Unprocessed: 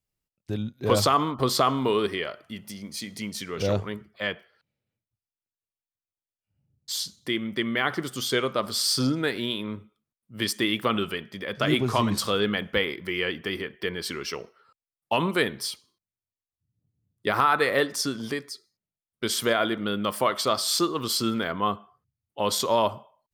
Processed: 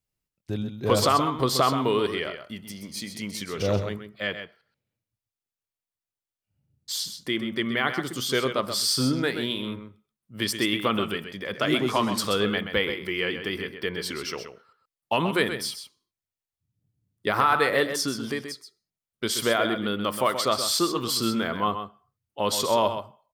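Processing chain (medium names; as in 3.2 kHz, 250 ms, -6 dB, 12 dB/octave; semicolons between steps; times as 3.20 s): 3.86–4.29 s: peaking EQ 940 Hz -9 dB 0.34 oct; 11.54–12.22 s: high-pass 180 Hz 12 dB/octave; delay 129 ms -9 dB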